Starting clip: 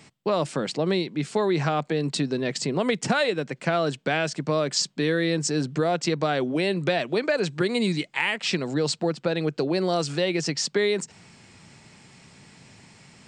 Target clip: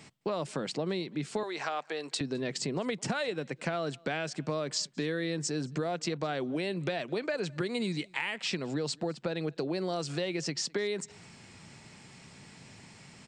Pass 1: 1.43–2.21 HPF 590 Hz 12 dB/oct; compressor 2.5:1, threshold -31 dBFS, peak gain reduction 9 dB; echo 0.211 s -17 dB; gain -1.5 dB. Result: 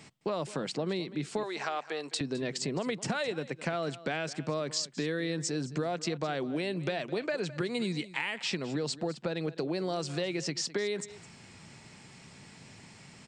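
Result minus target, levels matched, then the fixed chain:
echo-to-direct +10 dB
1.43–2.21 HPF 590 Hz 12 dB/oct; compressor 2.5:1, threshold -31 dBFS, peak gain reduction 9 dB; echo 0.211 s -27 dB; gain -1.5 dB

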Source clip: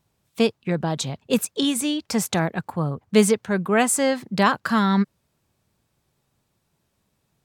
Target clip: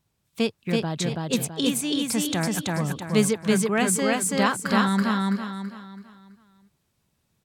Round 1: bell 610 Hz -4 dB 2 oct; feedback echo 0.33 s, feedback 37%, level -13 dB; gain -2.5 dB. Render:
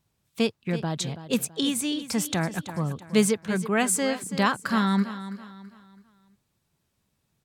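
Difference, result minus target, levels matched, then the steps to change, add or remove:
echo-to-direct -11.5 dB
change: feedback echo 0.33 s, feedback 37%, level -1.5 dB

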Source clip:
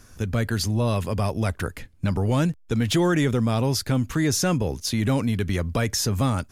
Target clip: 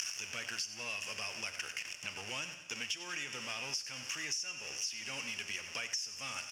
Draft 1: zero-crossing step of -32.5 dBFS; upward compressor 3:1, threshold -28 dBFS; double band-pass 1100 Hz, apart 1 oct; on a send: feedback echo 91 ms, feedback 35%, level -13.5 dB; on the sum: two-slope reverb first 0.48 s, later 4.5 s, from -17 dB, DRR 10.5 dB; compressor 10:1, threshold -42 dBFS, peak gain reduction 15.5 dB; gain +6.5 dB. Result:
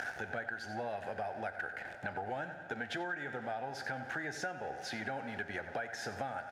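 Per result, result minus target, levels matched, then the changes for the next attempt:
1000 Hz band +11.5 dB; zero-crossing step: distortion -5 dB
change: double band-pass 3900 Hz, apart 1 oct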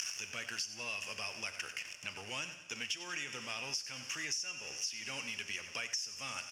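zero-crossing step: distortion -5 dB
change: zero-crossing step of -26 dBFS

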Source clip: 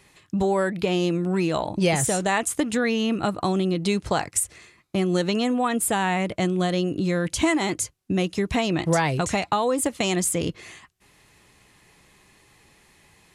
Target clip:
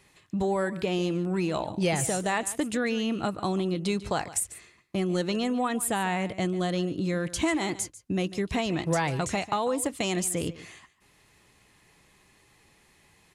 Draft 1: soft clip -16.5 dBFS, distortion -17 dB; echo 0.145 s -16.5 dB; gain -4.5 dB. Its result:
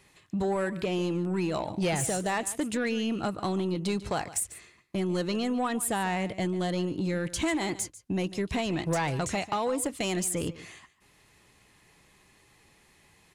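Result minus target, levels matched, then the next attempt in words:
soft clip: distortion +15 dB
soft clip -7 dBFS, distortion -32 dB; echo 0.145 s -16.5 dB; gain -4.5 dB

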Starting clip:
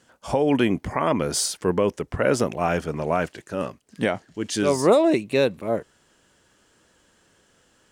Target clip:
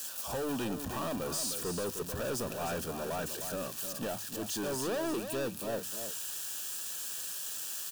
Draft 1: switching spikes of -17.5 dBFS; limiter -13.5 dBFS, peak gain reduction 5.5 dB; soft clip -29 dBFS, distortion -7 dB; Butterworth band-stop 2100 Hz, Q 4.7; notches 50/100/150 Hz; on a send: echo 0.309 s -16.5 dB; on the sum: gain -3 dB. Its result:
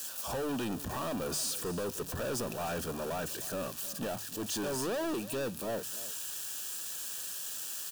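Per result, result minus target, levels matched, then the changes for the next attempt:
echo-to-direct -8 dB; switching spikes: distortion -7 dB
change: echo 0.309 s -8.5 dB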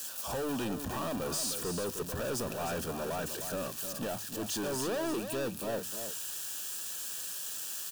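switching spikes: distortion -7 dB
change: switching spikes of -10.5 dBFS

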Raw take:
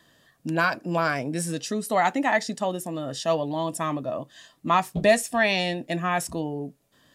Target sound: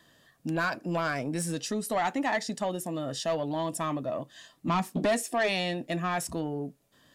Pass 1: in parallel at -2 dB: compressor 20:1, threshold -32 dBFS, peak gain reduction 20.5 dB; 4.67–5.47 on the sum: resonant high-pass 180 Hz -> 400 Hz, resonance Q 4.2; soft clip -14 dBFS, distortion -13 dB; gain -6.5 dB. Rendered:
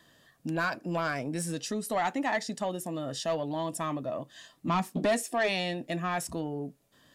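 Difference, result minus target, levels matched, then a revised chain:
compressor: peak gain reduction +7 dB
in parallel at -2 dB: compressor 20:1, threshold -24.5 dBFS, peak gain reduction 13 dB; 4.67–5.47 on the sum: resonant high-pass 180 Hz -> 400 Hz, resonance Q 4.2; soft clip -14 dBFS, distortion -13 dB; gain -6.5 dB

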